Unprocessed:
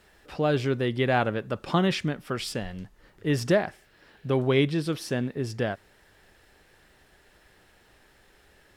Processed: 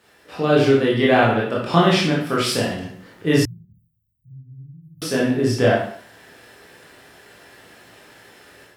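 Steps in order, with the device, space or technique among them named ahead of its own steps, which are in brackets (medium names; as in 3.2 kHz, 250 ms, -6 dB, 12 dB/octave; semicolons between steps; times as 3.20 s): far laptop microphone (reverberation RT60 0.55 s, pre-delay 17 ms, DRR -5 dB; high-pass 130 Hz 12 dB/octave; level rider gain up to 7 dB); 3.45–5.02 s: inverse Chebyshev band-stop 510–7000 Hz, stop band 80 dB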